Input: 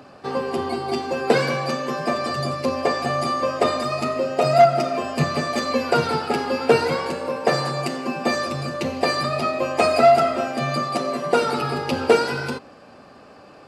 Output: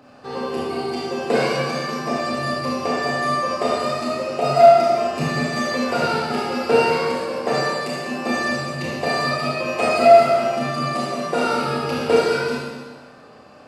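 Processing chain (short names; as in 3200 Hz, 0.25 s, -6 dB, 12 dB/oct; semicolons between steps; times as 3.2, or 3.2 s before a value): Schroeder reverb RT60 1.4 s, combs from 25 ms, DRR -5.5 dB; gain -6 dB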